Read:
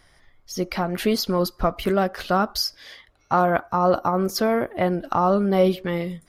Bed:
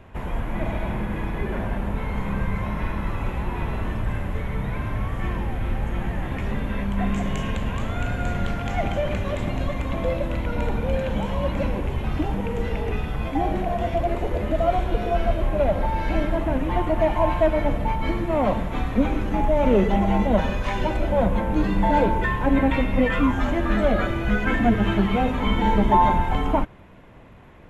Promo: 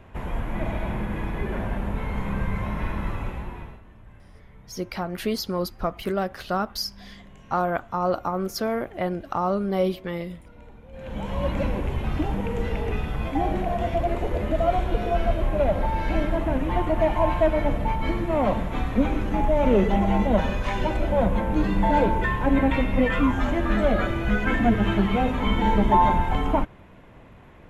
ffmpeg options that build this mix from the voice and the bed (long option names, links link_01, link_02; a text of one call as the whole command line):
ffmpeg -i stem1.wav -i stem2.wav -filter_complex "[0:a]adelay=4200,volume=-5dB[link_01];[1:a]volume=20dB,afade=type=out:start_time=3.06:duration=0.75:silence=0.0891251,afade=type=in:start_time=10.92:duration=0.54:silence=0.0841395[link_02];[link_01][link_02]amix=inputs=2:normalize=0" out.wav